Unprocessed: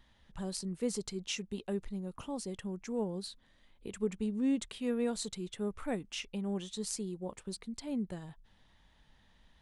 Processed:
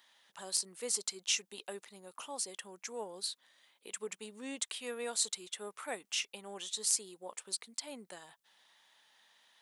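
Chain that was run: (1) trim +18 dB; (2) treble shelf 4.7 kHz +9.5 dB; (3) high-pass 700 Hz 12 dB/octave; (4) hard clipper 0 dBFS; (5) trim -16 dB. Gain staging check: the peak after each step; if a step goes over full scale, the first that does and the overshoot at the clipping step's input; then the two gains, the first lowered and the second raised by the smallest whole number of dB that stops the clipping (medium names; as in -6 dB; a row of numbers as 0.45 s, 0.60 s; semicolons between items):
-1.5 dBFS, +5.0 dBFS, +4.5 dBFS, 0.0 dBFS, -16.0 dBFS; step 2, 4.5 dB; step 1 +13 dB, step 5 -11 dB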